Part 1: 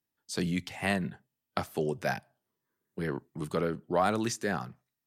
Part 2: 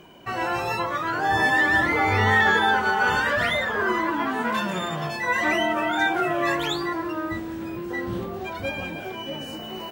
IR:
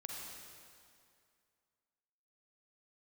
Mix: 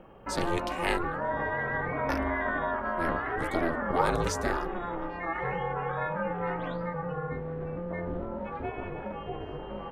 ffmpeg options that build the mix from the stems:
-filter_complex "[0:a]volume=3dB,asplit=3[a][b][c];[a]atrim=end=1.32,asetpts=PTS-STARTPTS,afade=t=out:st=1.316:d=0.004:c=hsin[d];[b]atrim=start=1.32:end=2.09,asetpts=PTS-STARTPTS,volume=0[e];[c]atrim=start=2.09,asetpts=PTS-STARTPTS,afade=t=in:d=0.004:c=hsin[f];[d][e][f]concat=n=3:v=0:a=1[g];[1:a]lowpass=1.6k,aemphasis=mode=reproduction:type=75kf,acompressor=threshold=-31dB:ratio=2,volume=1.5dB[h];[g][h]amix=inputs=2:normalize=0,aeval=exprs='val(0)*sin(2*PI*170*n/s)':c=same"

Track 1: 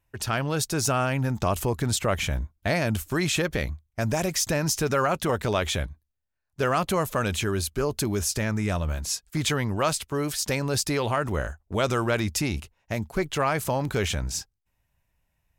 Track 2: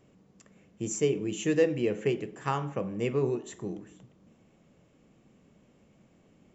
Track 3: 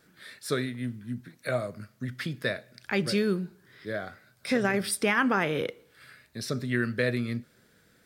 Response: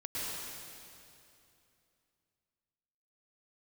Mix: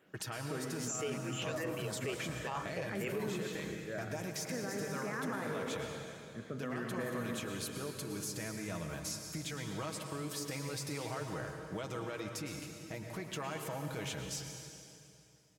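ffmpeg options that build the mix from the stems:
-filter_complex "[0:a]aecho=1:1:6.3:0.58,acompressor=threshold=-32dB:ratio=6,volume=-6.5dB,asplit=2[a][b];[b]volume=-7dB[c];[1:a]highpass=f=940:p=1,asplit=2[d][e];[e]afreqshift=2.9[f];[d][f]amix=inputs=2:normalize=1,volume=1dB[g];[2:a]lowpass=f=1.9k:w=0.5412,lowpass=f=1.9k:w=1.3066,volume=-7dB,asplit=2[h][i];[i]volume=-12.5dB[j];[a][h]amix=inputs=2:normalize=0,alimiter=level_in=8dB:limit=-24dB:level=0:latency=1:release=245,volume=-8dB,volume=0dB[k];[3:a]atrim=start_sample=2205[l];[c][j]amix=inputs=2:normalize=0[m];[m][l]afir=irnorm=-1:irlink=0[n];[g][k][n]amix=inputs=3:normalize=0,highpass=120,alimiter=level_in=5dB:limit=-24dB:level=0:latency=1:release=21,volume=-5dB"

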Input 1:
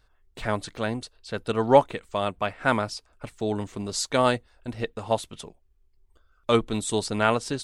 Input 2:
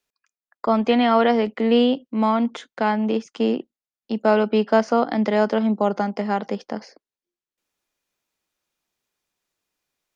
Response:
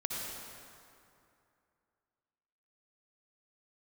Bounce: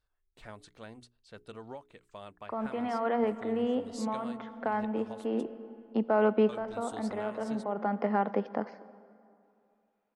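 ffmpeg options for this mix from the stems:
-filter_complex "[0:a]bandreject=f=60:t=h:w=6,bandreject=f=120:t=h:w=6,bandreject=f=180:t=h:w=6,bandreject=f=240:t=h:w=6,bandreject=f=300:t=h:w=6,bandreject=f=360:t=h:w=6,bandreject=f=420:t=h:w=6,acompressor=threshold=-23dB:ratio=10,volume=-17.5dB,asplit=2[a][b];[1:a]lowpass=1.5k,lowshelf=f=450:g=-6.5,alimiter=limit=-17.5dB:level=0:latency=1:release=137,adelay=1850,volume=0.5dB,asplit=2[c][d];[d]volume=-19dB[e];[b]apad=whole_len=529531[f];[c][f]sidechaincompress=threshold=-56dB:ratio=4:attack=44:release=474[g];[2:a]atrim=start_sample=2205[h];[e][h]afir=irnorm=-1:irlink=0[i];[a][g][i]amix=inputs=3:normalize=0"

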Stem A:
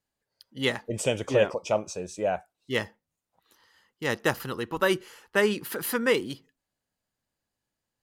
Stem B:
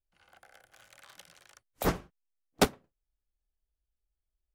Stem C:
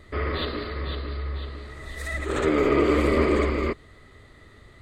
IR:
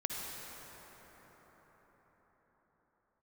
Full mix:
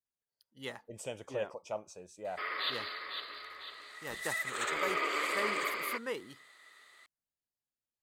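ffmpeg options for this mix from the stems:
-filter_complex "[0:a]adynamicequalizer=threshold=0.0141:dfrequency=880:dqfactor=0.78:tfrequency=880:tqfactor=0.78:attack=5:release=100:ratio=0.375:range=3.5:mode=boostabove:tftype=bell,volume=-18dB,asplit=2[a][b];[1:a]adelay=2250,volume=-18dB[c];[2:a]highpass=1.1k,adelay=2250,volume=-3dB[d];[b]apad=whole_len=299598[e];[c][e]sidechaincompress=threshold=-45dB:ratio=8:attack=16:release=1360[f];[a][f][d]amix=inputs=3:normalize=0,highshelf=f=6.5k:g=7.5"

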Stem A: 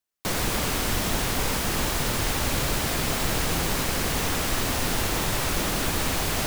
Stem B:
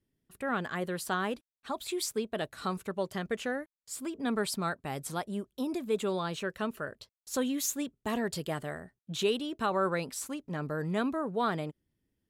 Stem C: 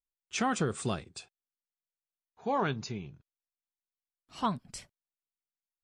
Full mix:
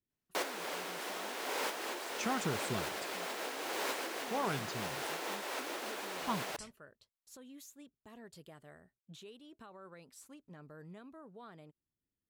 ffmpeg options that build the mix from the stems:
-filter_complex "[0:a]highpass=f=360:w=0.5412,highpass=f=360:w=1.3066,highshelf=f=4.5k:g=-10,bandreject=f=1.2k:w=23,adelay=100,volume=-3dB[a];[1:a]alimiter=level_in=6dB:limit=-24dB:level=0:latency=1:release=448,volume=-6dB,volume=-14dB,asplit=2[b][c];[2:a]adelay=1850,volume=-6dB[d];[c]apad=whole_len=289464[e];[a][e]sidechaincompress=threshold=-57dB:ratio=8:attack=31:release=631[f];[f][b][d]amix=inputs=3:normalize=0"

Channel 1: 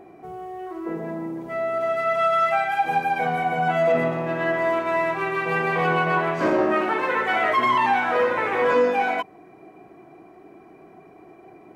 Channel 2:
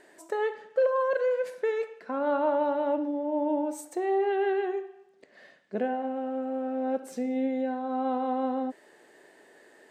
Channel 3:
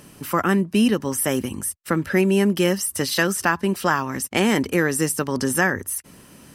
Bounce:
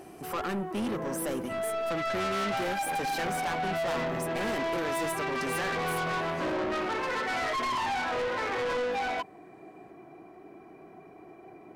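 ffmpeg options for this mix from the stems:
-filter_complex "[0:a]volume=-2.5dB[a];[1:a]volume=-14dB[b];[2:a]equalizer=f=710:w=0.58:g=8.5,volume=-10.5dB[c];[a][b][c]amix=inputs=3:normalize=0,asoftclip=type=tanh:threshold=-28dB"

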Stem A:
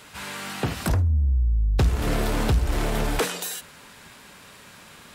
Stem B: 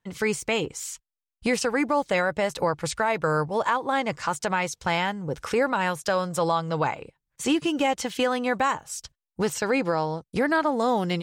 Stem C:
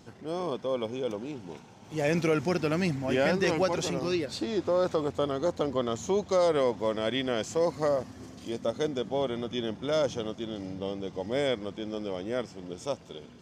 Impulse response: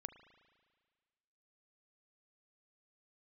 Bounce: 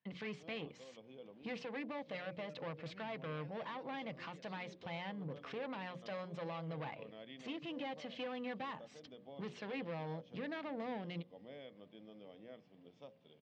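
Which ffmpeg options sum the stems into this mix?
-filter_complex "[1:a]aeval=exprs='(tanh(17.8*val(0)+0.45)-tanh(0.45))/17.8':c=same,volume=-5dB[a];[2:a]acompressor=threshold=-28dB:ratio=6,adelay=150,volume=-18dB[b];[a][b]amix=inputs=2:normalize=0,alimiter=level_in=9.5dB:limit=-24dB:level=0:latency=1:release=188,volume=-9.5dB,volume=0dB,highpass=f=120:w=0.5412,highpass=f=120:w=1.3066,equalizer=f=370:t=q:w=4:g=-7,equalizer=f=910:t=q:w=4:g=-5,equalizer=f=1.4k:t=q:w=4:g=-8,lowpass=f=3.7k:w=0.5412,lowpass=f=3.7k:w=1.3066,bandreject=f=60:t=h:w=6,bandreject=f=120:t=h:w=6,bandreject=f=180:t=h:w=6,bandreject=f=240:t=h:w=6,bandreject=f=300:t=h:w=6,bandreject=f=360:t=h:w=6,bandreject=f=420:t=h:w=6,bandreject=f=480:t=h:w=6,bandreject=f=540:t=h:w=6,bandreject=f=600:t=h:w=6"

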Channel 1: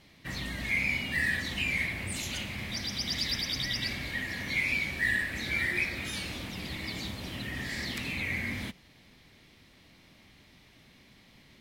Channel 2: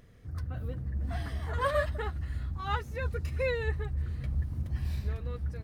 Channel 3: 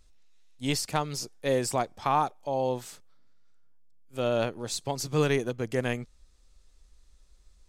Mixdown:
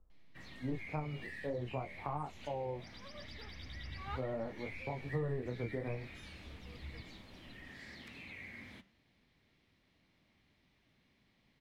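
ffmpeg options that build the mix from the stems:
-filter_complex "[0:a]acrossover=split=240|3000[a][b][c];[a]acompressor=threshold=-44dB:ratio=4[d];[b]acompressor=threshold=-32dB:ratio=4[e];[c]acompressor=threshold=-40dB:ratio=4[f];[d][e][f]amix=inputs=3:normalize=0,adelay=100,volume=-9.5dB[g];[1:a]adelay=1400,volume=-4.5dB[h];[2:a]lowpass=f=1.2k:w=0.5412,lowpass=f=1.2k:w=1.3066,flanger=delay=20:depth=6.8:speed=0.42,volume=2dB,asplit=2[i][j];[j]apad=whole_len=310024[k];[h][k]sidechaincompress=threshold=-49dB:ratio=8:attack=16:release=782[l];[g][l][i]amix=inputs=3:normalize=0,highshelf=f=6.2k:g=-11.5,acrossover=split=160[m][n];[n]acompressor=threshold=-32dB:ratio=10[o];[m][o]amix=inputs=2:normalize=0,flanger=delay=3.3:depth=9.9:regen=-89:speed=1.3:shape=triangular"

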